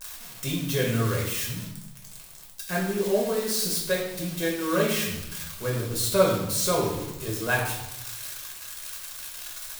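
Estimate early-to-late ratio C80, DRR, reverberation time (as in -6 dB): 6.0 dB, -3.5 dB, 0.90 s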